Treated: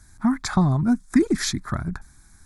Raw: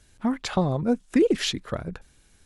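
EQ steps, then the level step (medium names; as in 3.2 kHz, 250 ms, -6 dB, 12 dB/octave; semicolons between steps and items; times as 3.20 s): dynamic bell 840 Hz, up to -4 dB, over -39 dBFS, Q 1; static phaser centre 1.2 kHz, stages 4; +8.0 dB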